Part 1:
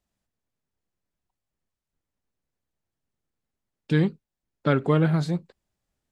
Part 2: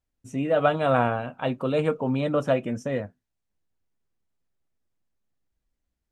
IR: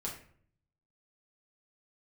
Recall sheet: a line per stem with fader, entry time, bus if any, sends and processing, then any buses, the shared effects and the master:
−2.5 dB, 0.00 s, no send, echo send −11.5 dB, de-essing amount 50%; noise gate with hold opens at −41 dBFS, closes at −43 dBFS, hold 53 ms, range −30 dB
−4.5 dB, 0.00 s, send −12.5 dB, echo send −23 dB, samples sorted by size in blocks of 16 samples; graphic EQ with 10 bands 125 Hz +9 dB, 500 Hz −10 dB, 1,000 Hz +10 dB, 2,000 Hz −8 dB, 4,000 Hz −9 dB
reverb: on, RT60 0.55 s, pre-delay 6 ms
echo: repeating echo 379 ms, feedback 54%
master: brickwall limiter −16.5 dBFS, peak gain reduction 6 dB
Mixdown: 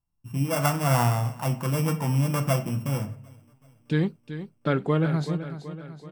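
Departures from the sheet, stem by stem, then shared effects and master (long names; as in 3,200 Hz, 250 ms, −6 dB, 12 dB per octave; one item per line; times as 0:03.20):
stem 2: send −12.5 dB → −3.5 dB
master: missing brickwall limiter −16.5 dBFS, peak gain reduction 6 dB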